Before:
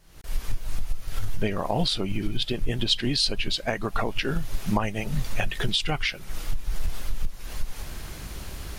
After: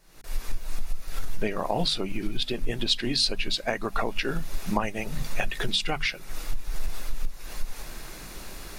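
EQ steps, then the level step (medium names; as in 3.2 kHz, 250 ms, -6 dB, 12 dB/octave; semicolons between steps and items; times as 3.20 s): peaking EQ 74 Hz -14 dB 1.3 oct; hum notches 50/100/150/200/250 Hz; band-stop 3.1 kHz, Q 11; 0.0 dB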